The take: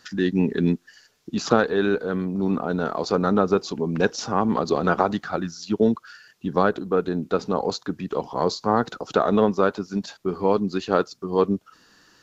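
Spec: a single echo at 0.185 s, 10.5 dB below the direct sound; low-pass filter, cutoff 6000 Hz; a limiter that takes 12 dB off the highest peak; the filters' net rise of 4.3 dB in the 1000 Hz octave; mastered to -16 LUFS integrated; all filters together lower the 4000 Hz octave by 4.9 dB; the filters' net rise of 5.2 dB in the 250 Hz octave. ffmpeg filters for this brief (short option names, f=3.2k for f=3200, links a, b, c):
-af "lowpass=6k,equalizer=f=250:t=o:g=6.5,equalizer=f=1k:t=o:g=5.5,equalizer=f=4k:t=o:g=-5,alimiter=limit=-12dB:level=0:latency=1,aecho=1:1:185:0.299,volume=7.5dB"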